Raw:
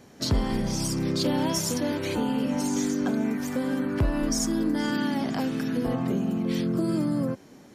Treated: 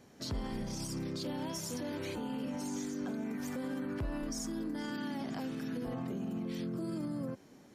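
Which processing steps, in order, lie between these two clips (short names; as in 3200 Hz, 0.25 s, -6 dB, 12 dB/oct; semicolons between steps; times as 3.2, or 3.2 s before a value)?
limiter -23 dBFS, peak gain reduction 7 dB; gain -7.5 dB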